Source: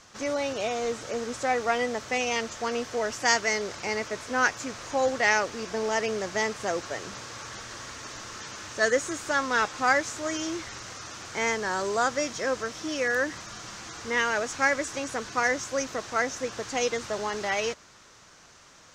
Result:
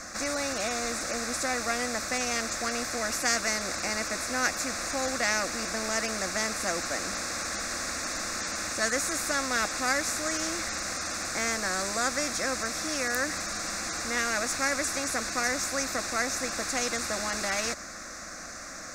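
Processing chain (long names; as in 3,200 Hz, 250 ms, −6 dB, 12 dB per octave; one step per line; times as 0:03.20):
phaser with its sweep stopped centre 620 Hz, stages 8
every bin compressed towards the loudest bin 2 to 1
level +4.5 dB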